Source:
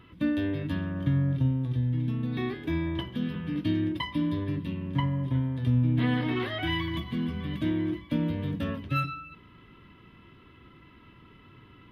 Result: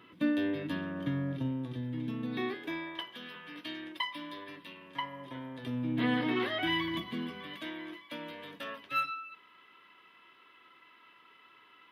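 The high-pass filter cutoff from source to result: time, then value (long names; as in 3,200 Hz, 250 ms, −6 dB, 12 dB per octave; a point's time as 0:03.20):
0:02.34 260 Hz
0:03.00 790 Hz
0:04.98 790 Hz
0:06.06 240 Hz
0:07.01 240 Hz
0:07.68 750 Hz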